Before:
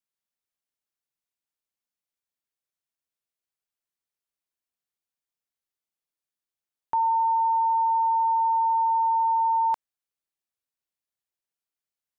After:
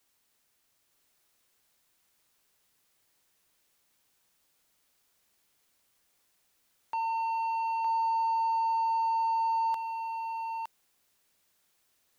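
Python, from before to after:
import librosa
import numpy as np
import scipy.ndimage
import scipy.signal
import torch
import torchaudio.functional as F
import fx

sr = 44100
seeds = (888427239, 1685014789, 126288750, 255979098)

y = fx.highpass(x, sr, hz=570.0, slope=6)
y = 10.0 ** (-26.0 / 20.0) * np.tanh(y / 10.0 ** (-26.0 / 20.0))
y = fx.dmg_noise_colour(y, sr, seeds[0], colour='white', level_db=-71.0)
y = y + 10.0 ** (-4.5 / 20.0) * np.pad(y, (int(913 * sr / 1000.0), 0))[:len(y)]
y = F.gain(torch.from_numpy(y), -2.5).numpy()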